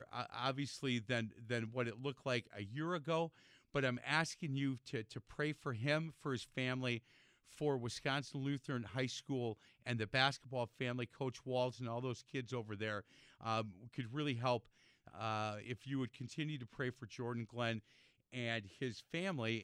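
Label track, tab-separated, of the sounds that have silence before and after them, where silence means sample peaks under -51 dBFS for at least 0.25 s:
3.740000	6.990000	sound
7.530000	9.530000	sound
9.860000	13.010000	sound
13.410000	14.660000	sound
15.070000	17.800000	sound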